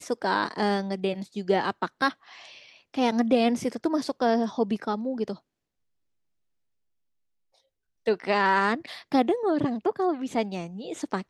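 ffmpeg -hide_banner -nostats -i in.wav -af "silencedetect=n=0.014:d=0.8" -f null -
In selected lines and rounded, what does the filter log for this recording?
silence_start: 5.35
silence_end: 8.06 | silence_duration: 2.71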